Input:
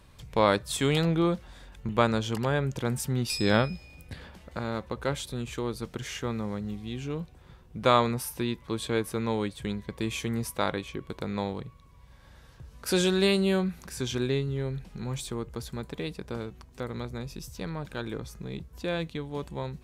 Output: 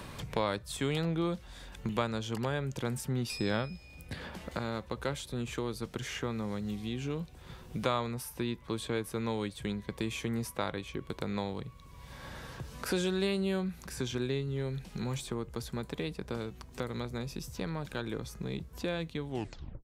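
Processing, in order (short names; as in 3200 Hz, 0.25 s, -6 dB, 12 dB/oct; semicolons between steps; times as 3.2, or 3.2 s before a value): tape stop at the end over 0.55 s; three-band squash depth 70%; gain -5 dB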